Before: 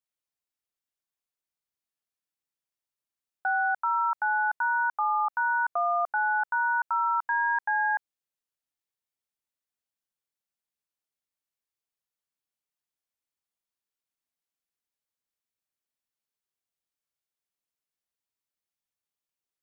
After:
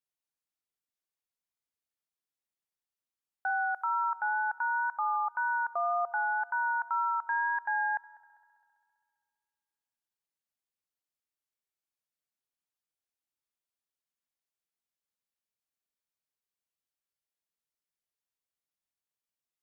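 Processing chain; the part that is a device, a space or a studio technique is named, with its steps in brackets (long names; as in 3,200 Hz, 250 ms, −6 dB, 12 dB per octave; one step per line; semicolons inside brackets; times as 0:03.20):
0:03.50–0:04.04: bass and treble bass −13 dB, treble +8 dB
multi-head tape echo (echo machine with several playback heads 66 ms, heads first and third, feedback 65%, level −23 dB; tape wow and flutter 12 cents)
level −4 dB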